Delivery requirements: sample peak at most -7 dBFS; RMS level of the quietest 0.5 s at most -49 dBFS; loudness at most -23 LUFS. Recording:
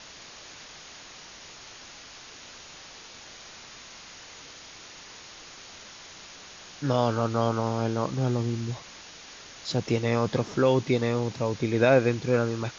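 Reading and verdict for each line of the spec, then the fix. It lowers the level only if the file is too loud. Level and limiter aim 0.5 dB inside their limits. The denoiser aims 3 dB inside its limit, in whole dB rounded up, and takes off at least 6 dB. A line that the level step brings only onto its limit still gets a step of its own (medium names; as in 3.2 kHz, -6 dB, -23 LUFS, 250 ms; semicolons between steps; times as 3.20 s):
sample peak -8.0 dBFS: pass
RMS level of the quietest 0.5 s -46 dBFS: fail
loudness -26.0 LUFS: pass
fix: noise reduction 6 dB, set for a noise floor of -46 dBFS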